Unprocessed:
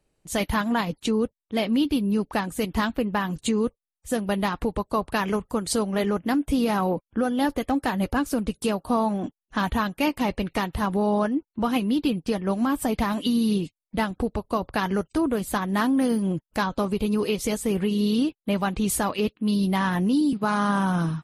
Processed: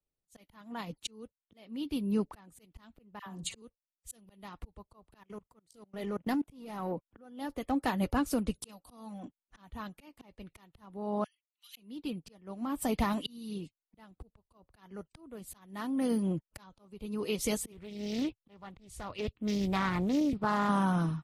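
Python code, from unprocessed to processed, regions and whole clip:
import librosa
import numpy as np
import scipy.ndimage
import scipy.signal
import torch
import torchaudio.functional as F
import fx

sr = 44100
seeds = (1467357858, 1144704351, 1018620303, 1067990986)

y = fx.chain(x, sr, fx.dispersion(late='lows', ms=72.0, hz=1000.0),
    fx.room_flutter(wall_m=9.8, rt60_s=0.22), at=(3.19, 3.62))
y = fx.chain(y, sr, fx.leveller(passes=1),
    fx.level_steps(step_db=23), at=(5.17, 6.92))
y = fx.chain(y, sr, fx.high_shelf(hz=2500.0, db=8.0),
    fx.notch(hz=380.0, q=5.4),
    fx.comb(ms=3.9, depth=0.47), at=(8.69, 9.25))
y = fx.chain(y, sr, fx.cheby2_highpass(hz=480.0, order=4, stop_db=80),
    fx.notch(hz=5300.0, q=7.6), at=(11.24, 11.77))
y = fx.chain(y, sr, fx.lowpass(hz=8200.0, slope=12),
    fx.low_shelf_res(hz=140.0, db=9.0, q=1.5),
    fx.doppler_dist(depth_ms=0.5), at=(17.72, 20.69))
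y = fx.auto_swell(y, sr, attack_ms=643.0)
y = fx.notch(y, sr, hz=1600.0, q=13.0)
y = fx.band_widen(y, sr, depth_pct=40)
y = y * librosa.db_to_amplitude(-6.5)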